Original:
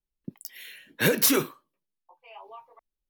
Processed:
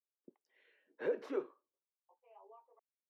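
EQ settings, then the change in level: ladder band-pass 490 Hz, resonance 45%; low shelf 470 Hz -8 dB; +1.5 dB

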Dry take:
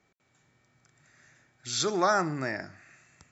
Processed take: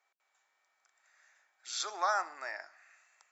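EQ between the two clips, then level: ladder high-pass 640 Hz, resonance 30%; 0.0 dB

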